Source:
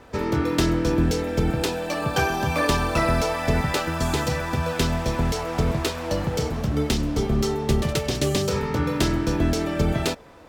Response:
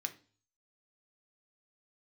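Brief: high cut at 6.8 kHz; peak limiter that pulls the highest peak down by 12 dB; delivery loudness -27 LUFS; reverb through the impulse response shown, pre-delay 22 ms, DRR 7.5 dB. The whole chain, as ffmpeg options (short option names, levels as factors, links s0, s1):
-filter_complex "[0:a]lowpass=6800,alimiter=limit=0.106:level=0:latency=1,asplit=2[s0][s1];[1:a]atrim=start_sample=2205,adelay=22[s2];[s1][s2]afir=irnorm=-1:irlink=0,volume=0.447[s3];[s0][s3]amix=inputs=2:normalize=0,volume=1.12"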